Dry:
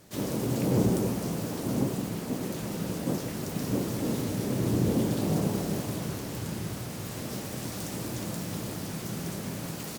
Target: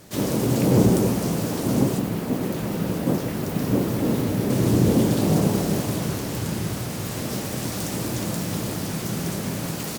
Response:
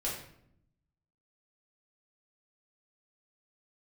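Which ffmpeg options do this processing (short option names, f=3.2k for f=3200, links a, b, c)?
-filter_complex "[0:a]asettb=1/sr,asplit=3[a][b][c];[a]atrim=end=1.994[d];[b]atrim=start=1.99:end=4.5,asetpts=PTS-STARTPTS,afade=t=in:d=0.004:c=qsin,afade=t=out:st=2.506:d=0.004:c=qsin,equalizer=f=6.9k:w=0.6:g=-6.5[e];[c]atrim=start=4.496[f];[d][e]acrossfade=d=0.004:c1=hsin:c2=qsin[g];[g][f]acrossfade=d=0.004:c1=qsin:c2=hsin,volume=7.5dB"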